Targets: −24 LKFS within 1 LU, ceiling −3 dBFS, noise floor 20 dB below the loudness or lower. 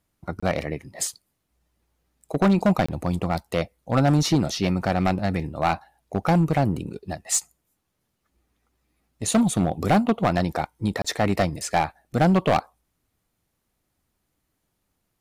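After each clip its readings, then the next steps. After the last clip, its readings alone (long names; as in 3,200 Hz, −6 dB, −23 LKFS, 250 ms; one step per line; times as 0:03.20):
share of clipped samples 1.2%; peaks flattened at −13.5 dBFS; number of dropouts 3; longest dropout 25 ms; integrated loudness −23.5 LKFS; sample peak −13.5 dBFS; target loudness −24.0 LKFS
→ clipped peaks rebuilt −13.5 dBFS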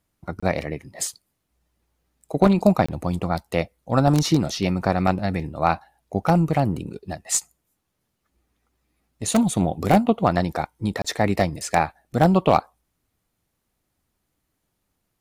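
share of clipped samples 0.0%; number of dropouts 3; longest dropout 25 ms
→ repair the gap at 0:00.40/0:02.86/0:11.02, 25 ms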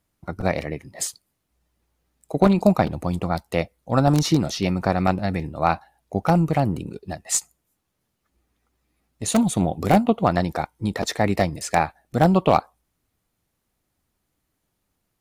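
number of dropouts 0; integrated loudness −22.5 LKFS; sample peak −4.5 dBFS; target loudness −24.0 LKFS
→ level −1.5 dB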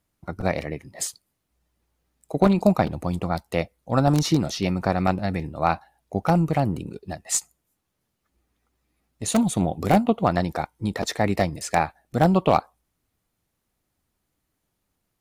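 integrated loudness −24.0 LKFS; sample peak −6.0 dBFS; background noise floor −78 dBFS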